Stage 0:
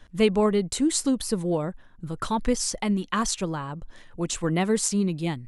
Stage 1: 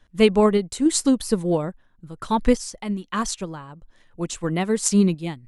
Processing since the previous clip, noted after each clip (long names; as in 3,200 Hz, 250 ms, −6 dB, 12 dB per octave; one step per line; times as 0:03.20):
sample-and-hold tremolo
expander for the loud parts 1.5 to 1, over −44 dBFS
level +8.5 dB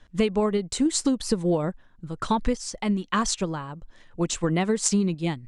low-pass filter 8,700 Hz 24 dB per octave
downward compressor 12 to 1, threshold −23 dBFS, peak gain reduction 13.5 dB
level +4 dB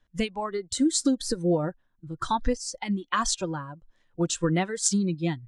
noise reduction from a noise print of the clip's start 15 dB